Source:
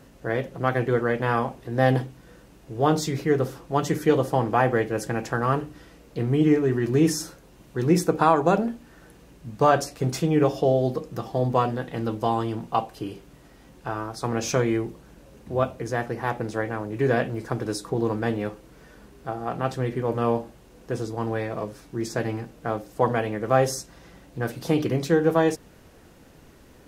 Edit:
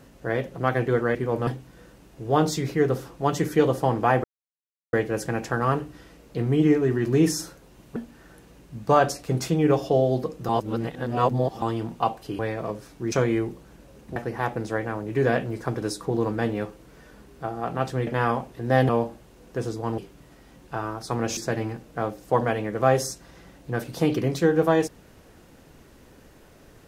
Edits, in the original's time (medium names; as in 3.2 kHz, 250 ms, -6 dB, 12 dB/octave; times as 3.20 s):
1.15–1.97 s: swap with 19.91–20.23 s
4.74 s: insert silence 0.69 s
7.77–8.68 s: delete
11.21–12.34 s: reverse
13.11–14.50 s: swap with 21.32–22.05 s
15.54–16.00 s: delete